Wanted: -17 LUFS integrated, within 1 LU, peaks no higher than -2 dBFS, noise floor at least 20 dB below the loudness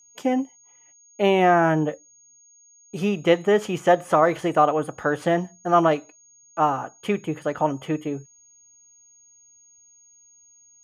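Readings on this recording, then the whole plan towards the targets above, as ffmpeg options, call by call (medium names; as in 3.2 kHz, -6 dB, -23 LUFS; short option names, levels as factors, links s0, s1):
steady tone 6.6 kHz; tone level -52 dBFS; loudness -22.0 LUFS; peak level -5.5 dBFS; loudness target -17.0 LUFS
-> -af "bandreject=f=6600:w=30"
-af "volume=1.78,alimiter=limit=0.794:level=0:latency=1"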